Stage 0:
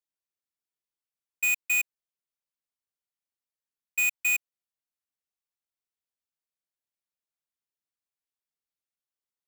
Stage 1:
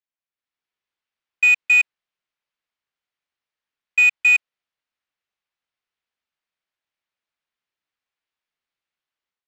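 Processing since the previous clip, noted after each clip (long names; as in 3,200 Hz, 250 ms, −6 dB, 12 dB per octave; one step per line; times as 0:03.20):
automatic gain control gain up to 10 dB
low-pass filter 2,700 Hz 12 dB per octave
tilt shelving filter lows −5.5 dB, about 1,100 Hz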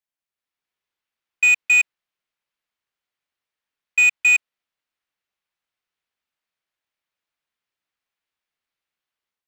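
hard clipping −13 dBFS, distortion −19 dB
level +1 dB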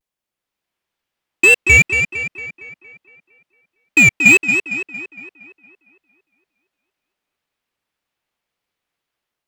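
tape wow and flutter 140 cents
in parallel at −9 dB: decimation without filtering 20×
on the sum: tape delay 230 ms, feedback 57%, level −4.5 dB, low-pass 3,900 Hz
level +4.5 dB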